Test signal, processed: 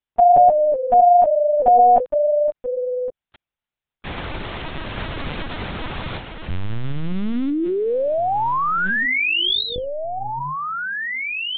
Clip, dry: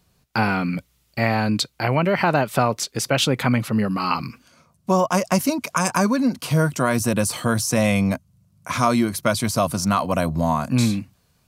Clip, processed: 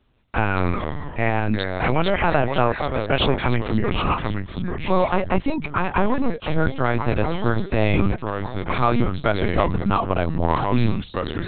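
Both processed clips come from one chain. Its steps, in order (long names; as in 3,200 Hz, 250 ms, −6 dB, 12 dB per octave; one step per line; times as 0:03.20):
delay with pitch and tempo change per echo 147 ms, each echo −3 semitones, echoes 2, each echo −6 dB
linear-prediction vocoder at 8 kHz pitch kept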